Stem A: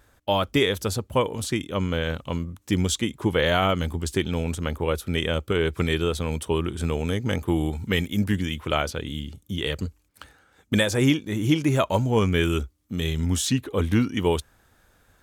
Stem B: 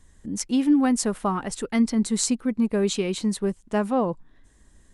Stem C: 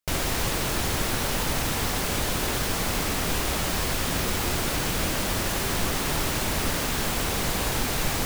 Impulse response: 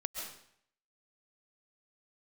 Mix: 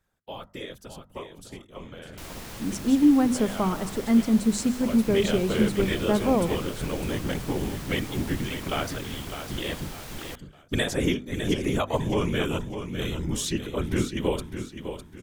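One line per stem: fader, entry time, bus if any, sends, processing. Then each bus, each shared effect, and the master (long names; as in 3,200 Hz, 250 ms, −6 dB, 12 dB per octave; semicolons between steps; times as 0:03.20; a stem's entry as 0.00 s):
0:04.68 −16.5 dB → 0:05.12 −4 dB, 0.00 s, no send, echo send −9 dB, hum removal 320.3 Hz, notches 6; random phases in short frames
−5.0 dB, 2.35 s, send −9.5 dB, no echo send, tilt shelving filter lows +5 dB
−14.0 dB, 2.10 s, no send, no echo send, no processing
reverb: on, RT60 0.65 s, pre-delay 95 ms
echo: repeating echo 605 ms, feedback 33%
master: mains-hum notches 50/100/150/200/250 Hz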